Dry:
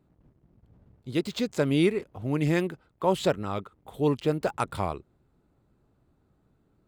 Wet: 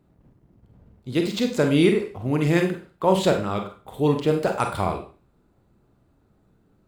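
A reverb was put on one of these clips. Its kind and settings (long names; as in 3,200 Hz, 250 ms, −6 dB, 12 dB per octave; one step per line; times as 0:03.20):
four-comb reverb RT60 0.38 s, combs from 32 ms, DRR 4 dB
level +4 dB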